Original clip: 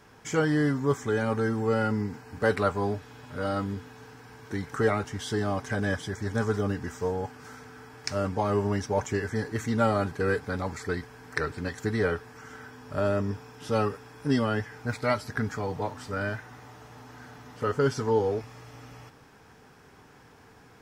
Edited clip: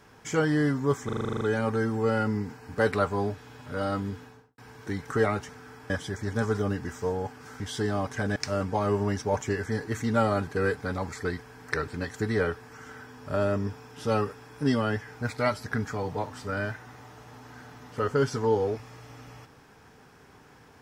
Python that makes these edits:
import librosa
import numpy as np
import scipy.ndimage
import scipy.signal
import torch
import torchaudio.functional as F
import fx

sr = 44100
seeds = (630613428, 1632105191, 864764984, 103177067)

y = fx.studio_fade_out(x, sr, start_s=3.84, length_s=0.38)
y = fx.edit(y, sr, fx.stutter(start_s=1.05, slice_s=0.04, count=10),
    fx.swap(start_s=5.13, length_s=0.76, other_s=7.59, other_length_s=0.41), tone=tone)